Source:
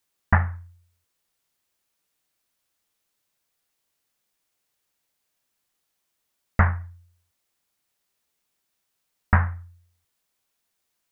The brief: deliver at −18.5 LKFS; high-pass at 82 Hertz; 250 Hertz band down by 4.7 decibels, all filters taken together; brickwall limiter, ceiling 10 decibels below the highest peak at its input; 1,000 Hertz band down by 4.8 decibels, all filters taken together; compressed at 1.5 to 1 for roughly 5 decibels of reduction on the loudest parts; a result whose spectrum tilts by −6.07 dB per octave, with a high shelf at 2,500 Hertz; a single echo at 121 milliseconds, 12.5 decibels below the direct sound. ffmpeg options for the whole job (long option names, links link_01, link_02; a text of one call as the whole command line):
ffmpeg -i in.wav -af "highpass=82,equalizer=frequency=250:width_type=o:gain=-6.5,equalizer=frequency=1000:width_type=o:gain=-8,highshelf=frequency=2500:gain=9,acompressor=threshold=-30dB:ratio=1.5,alimiter=limit=-20dB:level=0:latency=1,aecho=1:1:121:0.237,volume=18dB" out.wav